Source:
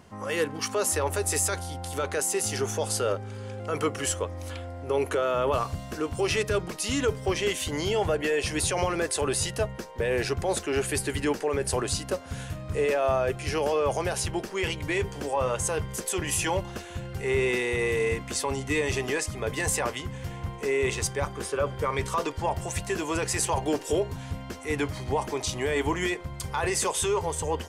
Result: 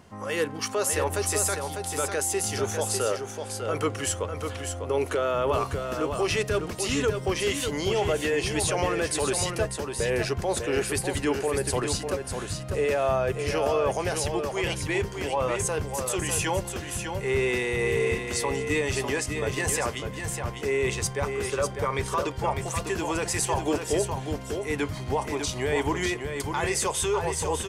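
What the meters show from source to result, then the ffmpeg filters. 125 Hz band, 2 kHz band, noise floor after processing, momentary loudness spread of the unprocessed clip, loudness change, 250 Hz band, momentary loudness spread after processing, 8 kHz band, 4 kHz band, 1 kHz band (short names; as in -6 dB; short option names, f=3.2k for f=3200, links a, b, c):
+1.0 dB, +1.0 dB, -37 dBFS, 7 LU, +1.0 dB, +1.0 dB, 6 LU, +1.0 dB, +1.0 dB, +1.0 dB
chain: -af "aecho=1:1:599:0.473"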